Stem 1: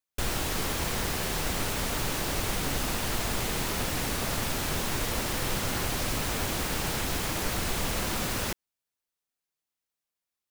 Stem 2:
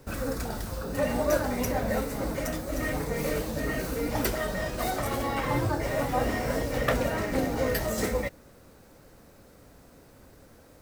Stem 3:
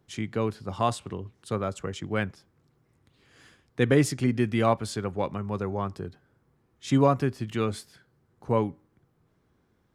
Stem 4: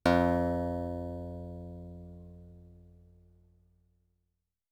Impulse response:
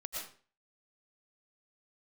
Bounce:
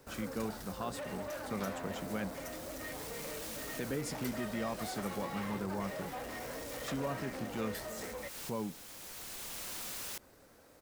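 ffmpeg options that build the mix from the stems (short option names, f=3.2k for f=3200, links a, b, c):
-filter_complex "[0:a]highshelf=f=3.7k:g=10,adelay=1650,volume=-12dB[a];[1:a]volume=-4dB[b];[2:a]equalizer=f=190:w=1.8:g=12,alimiter=limit=-16.5dB:level=0:latency=1:release=75,volume=-8.5dB,asplit=2[c][d];[3:a]adelay=1550,volume=-5dB[e];[d]apad=whole_len=536037[f];[a][f]sidechaincompress=threshold=-44dB:ratio=6:attack=5.5:release=1010[g];[g][b][e]amix=inputs=3:normalize=0,asoftclip=type=tanh:threshold=-31.5dB,acompressor=threshold=-38dB:ratio=6,volume=0dB[h];[c][h]amix=inputs=2:normalize=0,lowshelf=f=230:g=-10.5"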